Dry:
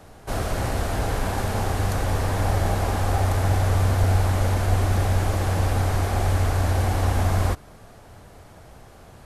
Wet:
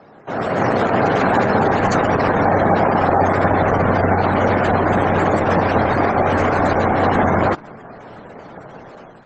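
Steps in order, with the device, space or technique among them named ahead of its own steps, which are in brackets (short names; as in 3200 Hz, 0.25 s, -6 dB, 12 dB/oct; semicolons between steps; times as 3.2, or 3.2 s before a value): noise-suppressed video call (HPF 150 Hz 24 dB/oct; spectral gate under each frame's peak -20 dB strong; AGC gain up to 9 dB; gain +4.5 dB; Opus 12 kbps 48000 Hz)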